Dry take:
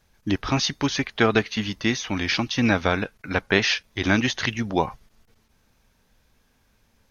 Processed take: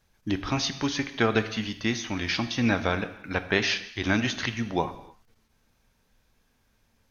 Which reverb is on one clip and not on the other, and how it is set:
reverb whose tail is shaped and stops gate 330 ms falling, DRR 10 dB
level −4.5 dB

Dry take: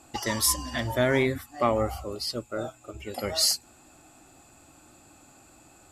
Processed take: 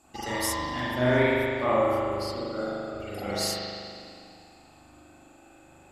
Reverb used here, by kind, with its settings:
spring reverb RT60 2.3 s, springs 40 ms, chirp 75 ms, DRR −9.5 dB
level −8 dB

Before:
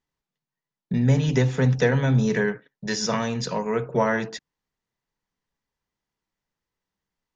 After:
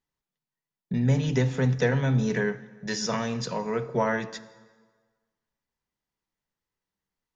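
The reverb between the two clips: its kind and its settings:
dense smooth reverb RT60 1.5 s, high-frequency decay 0.8×, DRR 14.5 dB
level −3.5 dB

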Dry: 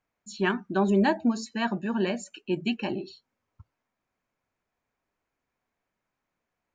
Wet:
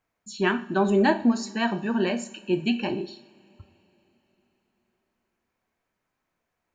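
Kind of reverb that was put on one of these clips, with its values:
coupled-rooms reverb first 0.49 s, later 4 s, from −22 dB, DRR 8.5 dB
level +2.5 dB

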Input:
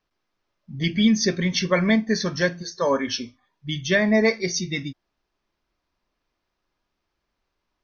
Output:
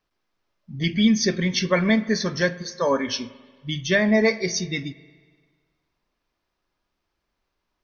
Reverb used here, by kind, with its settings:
spring reverb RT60 1.6 s, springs 43/47 ms, chirp 70 ms, DRR 16.5 dB

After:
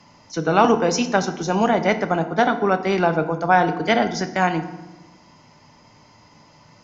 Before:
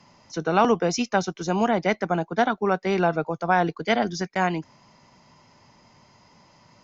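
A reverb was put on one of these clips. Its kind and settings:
feedback delay network reverb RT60 1 s, low-frequency decay 1.5×, high-frequency decay 0.7×, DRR 8 dB
level +3.5 dB

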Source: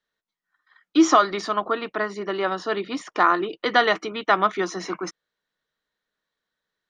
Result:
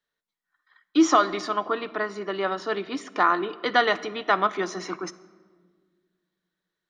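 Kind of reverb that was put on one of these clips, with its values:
rectangular room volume 2,000 cubic metres, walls mixed, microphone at 0.35 metres
level −2.5 dB

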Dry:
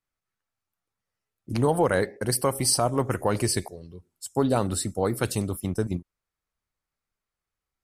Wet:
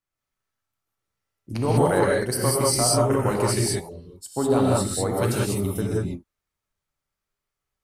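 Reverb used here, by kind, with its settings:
reverb whose tail is shaped and stops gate 220 ms rising, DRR −4 dB
level −2.5 dB

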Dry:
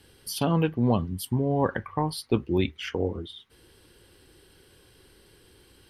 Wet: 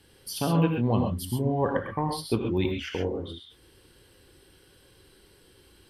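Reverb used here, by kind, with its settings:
reverb whose tail is shaped and stops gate 150 ms rising, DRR 2.5 dB
level −2.5 dB

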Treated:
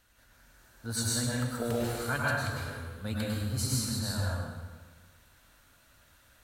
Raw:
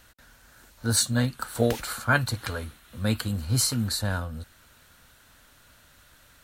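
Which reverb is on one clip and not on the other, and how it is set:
dense smooth reverb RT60 1.4 s, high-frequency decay 0.7×, pre-delay 90 ms, DRR −5.5 dB
level −11.5 dB

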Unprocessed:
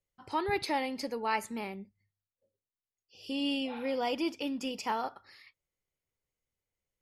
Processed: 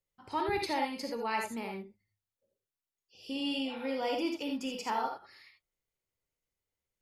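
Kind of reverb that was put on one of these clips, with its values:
reverb whose tail is shaped and stops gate 100 ms rising, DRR 2.5 dB
level −2.5 dB

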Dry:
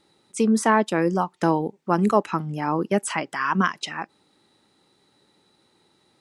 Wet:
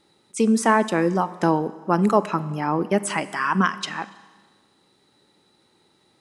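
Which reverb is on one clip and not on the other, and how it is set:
four-comb reverb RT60 1.4 s, combs from 31 ms, DRR 15 dB
level +1 dB

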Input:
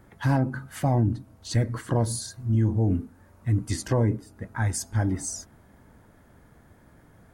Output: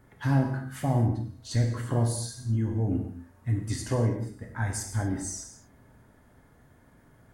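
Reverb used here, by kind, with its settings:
reverb whose tail is shaped and stops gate 280 ms falling, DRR 1.5 dB
level −5 dB

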